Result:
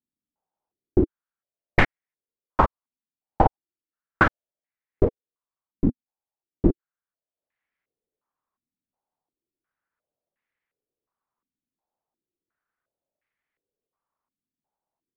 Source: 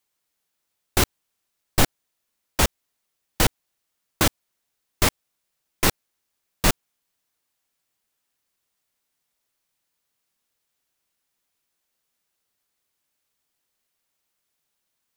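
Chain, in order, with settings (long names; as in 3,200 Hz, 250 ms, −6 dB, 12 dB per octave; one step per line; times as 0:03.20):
transient designer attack +9 dB, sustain −10 dB
low-pass on a step sequencer 2.8 Hz 250–2,000 Hz
level −7 dB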